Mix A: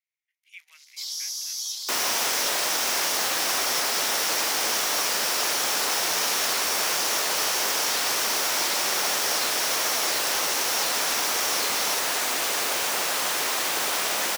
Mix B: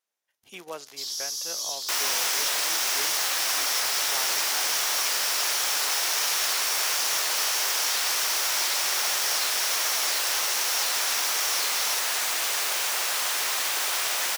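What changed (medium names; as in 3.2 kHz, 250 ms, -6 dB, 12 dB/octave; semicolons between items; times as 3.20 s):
speech: remove ladder high-pass 2 kHz, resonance 75%; second sound: add high-pass 1.1 kHz 6 dB/octave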